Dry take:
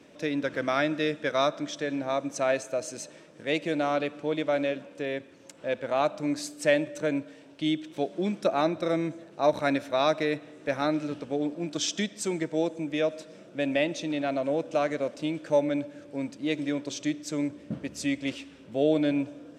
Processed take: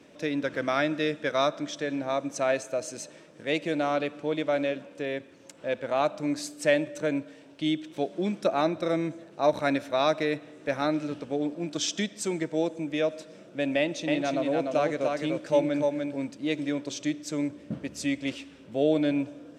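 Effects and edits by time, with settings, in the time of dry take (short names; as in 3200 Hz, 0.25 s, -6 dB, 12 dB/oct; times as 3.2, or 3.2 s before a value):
13.78–16.25 echo 0.296 s -3.5 dB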